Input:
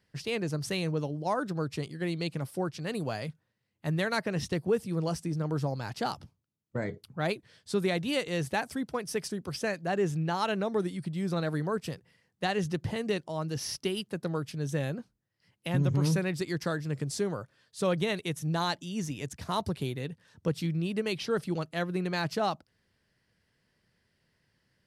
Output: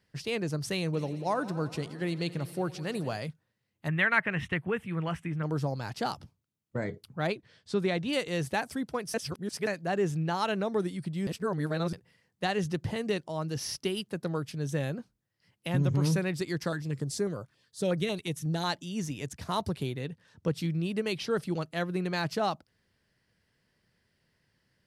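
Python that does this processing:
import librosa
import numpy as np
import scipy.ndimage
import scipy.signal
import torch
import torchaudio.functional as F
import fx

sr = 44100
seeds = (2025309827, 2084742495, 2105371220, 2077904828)

y = fx.echo_heads(x, sr, ms=87, heads='first and second', feedback_pct=68, wet_db=-21, at=(0.93, 3.16), fade=0.02)
y = fx.curve_eq(y, sr, hz=(130.0, 500.0, 1100.0, 2000.0, 3100.0, 4700.0, 7500.0), db=(0, -6, 4, 11, 5, -19, -12), at=(3.88, 5.43))
y = fx.air_absorb(y, sr, metres=67.0, at=(7.27, 8.13))
y = fx.filter_held_notch(y, sr, hz=11.0, low_hz=520.0, high_hz=3100.0, at=(16.68, 18.64), fade=0.02)
y = fx.high_shelf(y, sr, hz=10000.0, db=-7.5, at=(19.83, 20.57))
y = fx.edit(y, sr, fx.reverse_span(start_s=9.14, length_s=0.53),
    fx.reverse_span(start_s=11.27, length_s=0.66), tone=tone)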